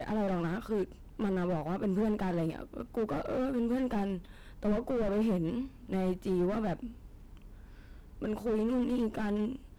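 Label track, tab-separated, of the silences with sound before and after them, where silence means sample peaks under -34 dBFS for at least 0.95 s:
6.870000	8.220000	silence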